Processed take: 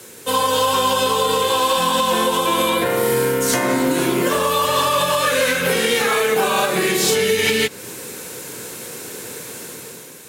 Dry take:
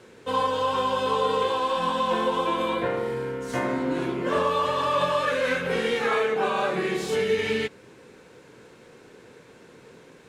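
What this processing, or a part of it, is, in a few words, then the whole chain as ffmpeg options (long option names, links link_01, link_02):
FM broadcast chain: -filter_complex "[0:a]highpass=64,dynaudnorm=framelen=140:gausssize=9:maxgain=8dB,acrossover=split=150|6200[link_01][link_02][link_03];[link_01]acompressor=threshold=-38dB:ratio=4[link_04];[link_02]acompressor=threshold=-19dB:ratio=4[link_05];[link_03]acompressor=threshold=-54dB:ratio=4[link_06];[link_04][link_05][link_06]amix=inputs=3:normalize=0,aemphasis=mode=production:type=50fm,alimiter=limit=-14.5dB:level=0:latency=1:release=224,asoftclip=type=hard:threshold=-16.5dB,lowpass=frequency=15000:width=0.5412,lowpass=frequency=15000:width=1.3066,aemphasis=mode=production:type=50fm,volume=6dB"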